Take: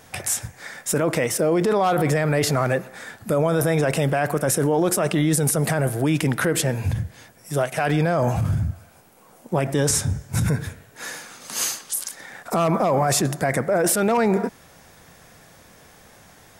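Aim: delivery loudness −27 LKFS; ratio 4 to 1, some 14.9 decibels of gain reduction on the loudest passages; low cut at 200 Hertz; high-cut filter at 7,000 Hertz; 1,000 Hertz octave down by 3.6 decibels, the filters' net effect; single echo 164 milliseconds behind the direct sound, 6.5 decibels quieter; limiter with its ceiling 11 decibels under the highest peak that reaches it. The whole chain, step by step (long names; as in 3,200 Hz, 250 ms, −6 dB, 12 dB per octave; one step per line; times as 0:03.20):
high-pass filter 200 Hz
low-pass filter 7,000 Hz
parametric band 1,000 Hz −5.5 dB
downward compressor 4 to 1, threshold −37 dBFS
brickwall limiter −31 dBFS
single-tap delay 164 ms −6.5 dB
level +13 dB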